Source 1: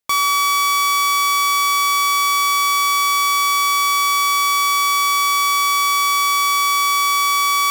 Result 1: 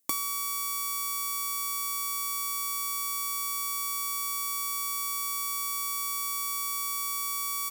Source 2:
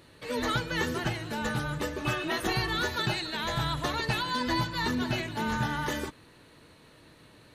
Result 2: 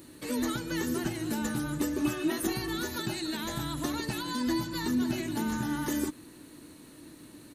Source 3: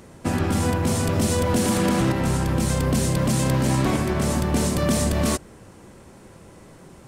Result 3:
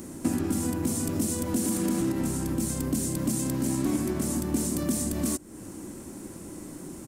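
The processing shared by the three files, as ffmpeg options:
-af "highshelf=f=6000:g=11.5,acompressor=threshold=0.0251:ratio=4,firequalizer=gain_entry='entry(130,0);entry(300,13);entry(440,-1);entry(3300,-4);entry(7100,3)':delay=0.05:min_phase=1"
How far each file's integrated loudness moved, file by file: -14.0 LU, -1.5 LU, -6.0 LU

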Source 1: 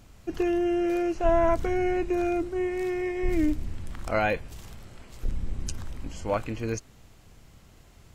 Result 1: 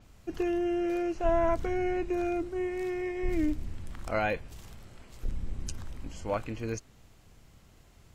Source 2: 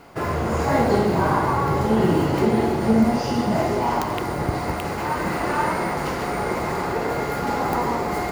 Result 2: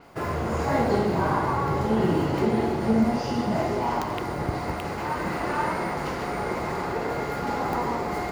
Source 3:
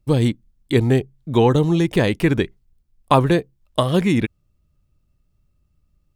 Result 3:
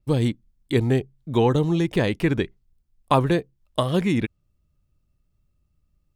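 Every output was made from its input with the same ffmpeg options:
-af "adynamicequalizer=threshold=0.00398:dfrequency=7200:dqfactor=0.7:tfrequency=7200:tqfactor=0.7:attack=5:release=100:ratio=0.375:range=2.5:mode=cutabove:tftype=highshelf,volume=0.631"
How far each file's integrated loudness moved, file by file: -4.0 LU, -4.0 LU, -4.0 LU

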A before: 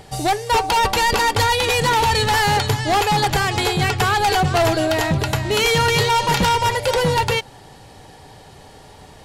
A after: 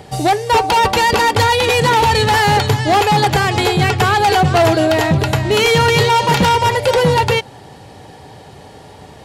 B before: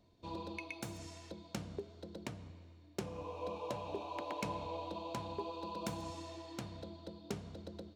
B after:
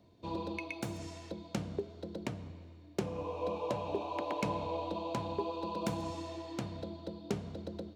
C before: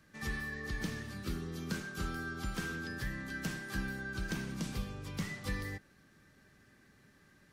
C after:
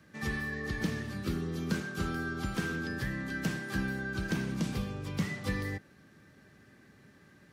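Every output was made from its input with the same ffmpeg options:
-filter_complex "[0:a]highpass=73,equalizer=f=2300:w=0.62:g=3.5,acrossover=split=850|7400[s0][s1][s2];[s0]acontrast=62[s3];[s3][s1][s2]amix=inputs=3:normalize=0"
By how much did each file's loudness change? +4.5 LU, +5.5 LU, +4.5 LU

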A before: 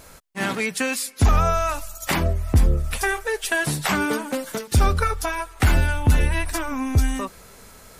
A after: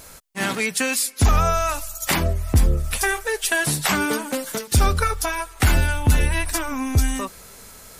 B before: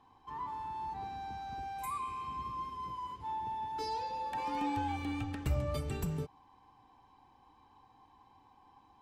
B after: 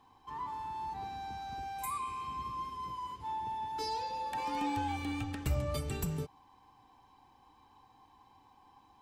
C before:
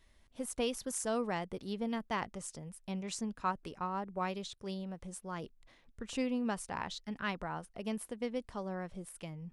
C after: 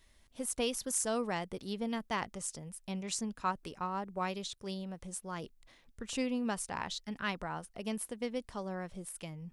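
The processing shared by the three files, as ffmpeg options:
-af "highshelf=f=3500:g=6.5"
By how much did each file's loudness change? +1.0 LU, +0.5 LU, +1.0 LU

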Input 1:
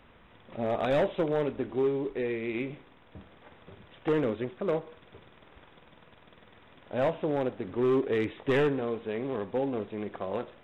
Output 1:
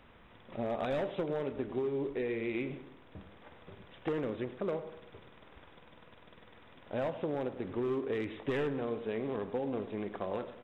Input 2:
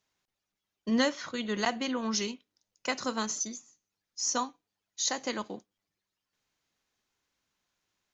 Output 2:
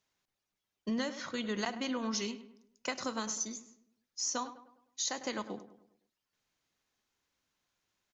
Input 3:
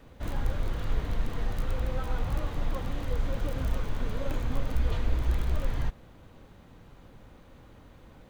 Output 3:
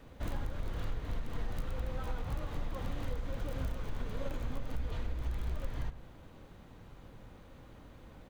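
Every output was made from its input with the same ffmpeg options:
-filter_complex "[0:a]acompressor=threshold=0.0355:ratio=10,asplit=2[s0][s1];[s1]adelay=102,lowpass=f=2100:p=1,volume=0.237,asplit=2[s2][s3];[s3]adelay=102,lowpass=f=2100:p=1,volume=0.46,asplit=2[s4][s5];[s5]adelay=102,lowpass=f=2100:p=1,volume=0.46,asplit=2[s6][s7];[s7]adelay=102,lowpass=f=2100:p=1,volume=0.46,asplit=2[s8][s9];[s9]adelay=102,lowpass=f=2100:p=1,volume=0.46[s10];[s0][s2][s4][s6][s8][s10]amix=inputs=6:normalize=0,volume=0.841"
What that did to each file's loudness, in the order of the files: -6.0 LU, -5.0 LU, -7.5 LU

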